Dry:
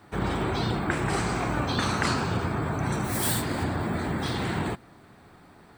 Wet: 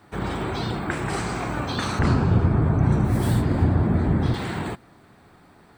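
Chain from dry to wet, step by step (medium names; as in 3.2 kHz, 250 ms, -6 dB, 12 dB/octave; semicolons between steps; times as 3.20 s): 1.99–4.34 s: tilt EQ -3.5 dB/octave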